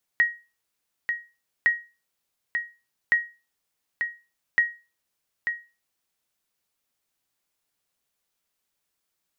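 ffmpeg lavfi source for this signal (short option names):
-f lavfi -i "aevalsrc='0.251*(sin(2*PI*1890*mod(t,1.46))*exp(-6.91*mod(t,1.46)/0.3)+0.447*sin(2*PI*1890*max(mod(t,1.46)-0.89,0))*exp(-6.91*max(mod(t,1.46)-0.89,0)/0.3))':d=5.84:s=44100"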